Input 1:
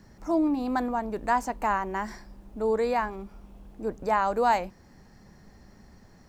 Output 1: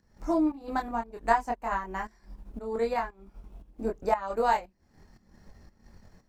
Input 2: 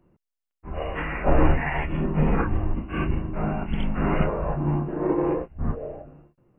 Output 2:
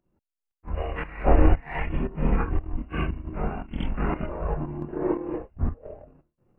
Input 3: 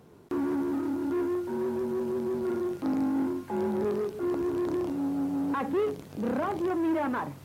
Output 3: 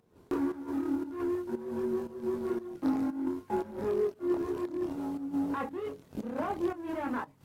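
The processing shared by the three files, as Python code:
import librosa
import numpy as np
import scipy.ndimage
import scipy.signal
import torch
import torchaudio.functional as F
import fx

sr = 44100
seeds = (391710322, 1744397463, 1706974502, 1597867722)

y = fx.transient(x, sr, attack_db=6, sustain_db=-9)
y = fx.chorus_voices(y, sr, voices=6, hz=0.49, base_ms=24, depth_ms=2.4, mix_pct=45)
y = fx.volume_shaper(y, sr, bpm=116, per_beat=1, depth_db=-12, release_ms=162.0, shape='slow start')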